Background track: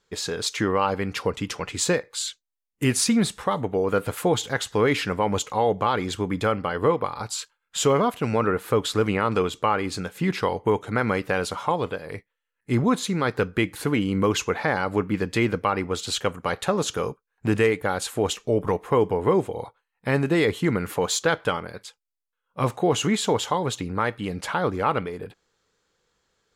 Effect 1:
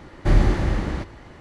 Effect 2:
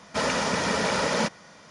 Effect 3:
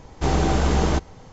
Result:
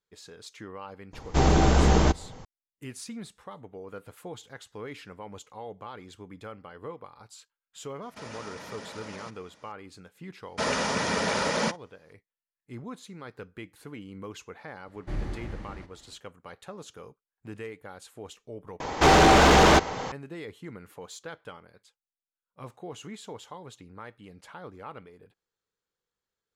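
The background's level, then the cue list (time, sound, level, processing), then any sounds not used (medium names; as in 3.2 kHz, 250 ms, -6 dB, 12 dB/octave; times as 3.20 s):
background track -19 dB
1.13 s: add 3
8.02 s: add 2 -10.5 dB + peak limiter -24 dBFS
10.43 s: add 2 -2 dB + gate -42 dBFS, range -19 dB
14.82 s: add 1 -16 dB, fades 0.10 s
18.80 s: replace with 3 -1 dB + overdrive pedal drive 26 dB, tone 3.2 kHz, clips at -8 dBFS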